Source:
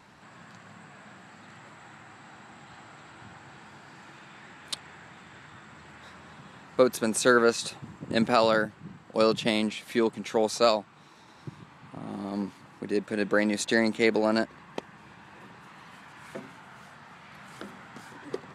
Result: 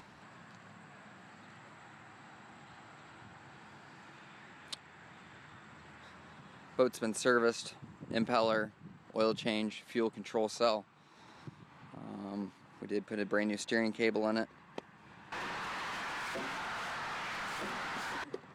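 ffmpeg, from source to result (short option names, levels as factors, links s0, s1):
-filter_complex "[0:a]asettb=1/sr,asplit=3[s0][s1][s2];[s0]atrim=end=15.324[s3];[s1]atrim=start=15.32:end=18.24,asetpts=PTS-STARTPTS,afade=t=in:d=0.004:c=qsin,afade=t=out:st=2.916:d=0.004:c=qsin,asplit=2[s4][s5];[s5]highpass=f=720:p=1,volume=56.2,asoftclip=type=tanh:threshold=0.0631[s6];[s4][s6]amix=inputs=2:normalize=0,lowpass=f=5200:p=1,volume=0.501[s7];[s2]atrim=start=18.236[s8];[s3][s7]acrossfade=d=0.004:c1=hsin:c2=qsin[s9];[s9][s8]acrossfade=d=0.004:c1=qsin:c2=hsin,highshelf=f=10000:g=-8.5,acompressor=mode=upward:threshold=0.01:ratio=2.5,volume=0.398"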